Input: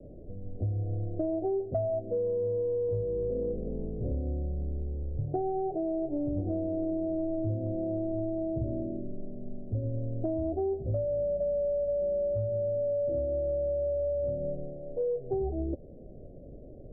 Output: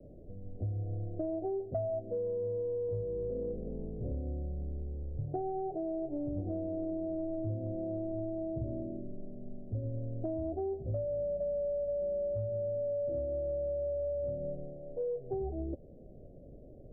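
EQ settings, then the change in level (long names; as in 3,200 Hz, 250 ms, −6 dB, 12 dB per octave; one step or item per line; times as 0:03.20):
bass and treble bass +8 dB, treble −4 dB
low-shelf EQ 290 Hz −11 dB
−2.5 dB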